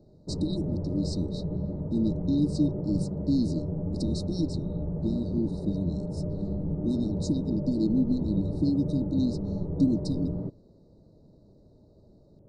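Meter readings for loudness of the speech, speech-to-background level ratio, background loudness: -30.0 LUFS, 2.5 dB, -32.5 LUFS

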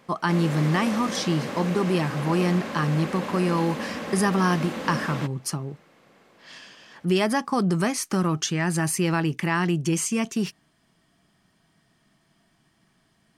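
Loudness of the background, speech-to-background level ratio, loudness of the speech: -32.5 LUFS, 7.5 dB, -25.0 LUFS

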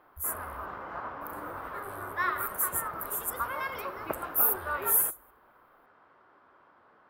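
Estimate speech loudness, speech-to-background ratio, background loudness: -28.5 LUFS, 7.5 dB, -36.0 LUFS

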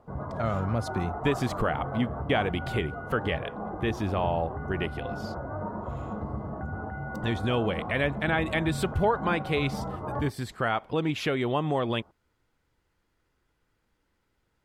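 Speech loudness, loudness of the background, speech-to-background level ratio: -29.5 LUFS, -36.0 LUFS, 6.5 dB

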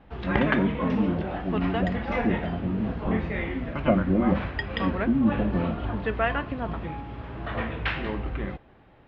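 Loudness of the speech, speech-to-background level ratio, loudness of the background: -28.0 LUFS, 2.0 dB, -30.0 LUFS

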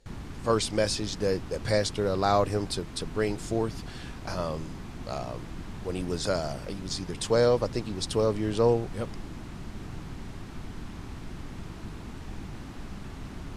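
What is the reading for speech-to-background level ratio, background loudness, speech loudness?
12.5 dB, -41.5 LUFS, -29.0 LUFS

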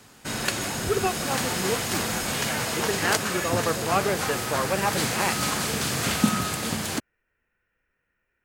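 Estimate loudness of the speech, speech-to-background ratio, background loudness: -29.0 LUFS, -2.5 dB, -26.5 LUFS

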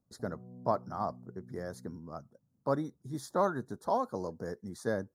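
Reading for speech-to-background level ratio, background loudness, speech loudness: 16.5 dB, -52.5 LUFS, -36.0 LUFS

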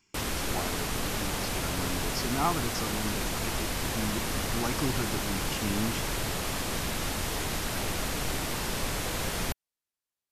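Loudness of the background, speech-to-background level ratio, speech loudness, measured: -31.5 LUFS, -4.5 dB, -36.0 LUFS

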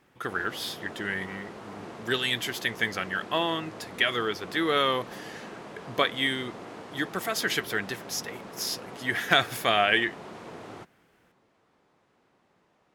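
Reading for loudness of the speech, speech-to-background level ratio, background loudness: -28.0 LUFS, 15.0 dB, -43.0 LUFS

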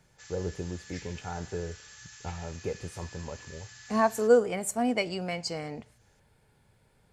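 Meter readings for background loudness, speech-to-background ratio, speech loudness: -48.0 LUFS, 17.0 dB, -31.0 LUFS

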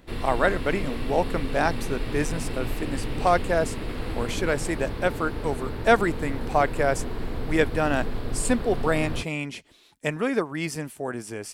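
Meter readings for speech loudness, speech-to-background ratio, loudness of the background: -26.5 LUFS, 7.0 dB, -33.5 LUFS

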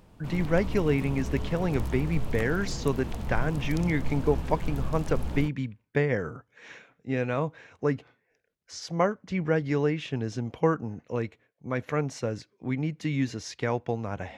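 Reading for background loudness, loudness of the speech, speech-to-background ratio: -36.0 LUFS, -29.5 LUFS, 6.5 dB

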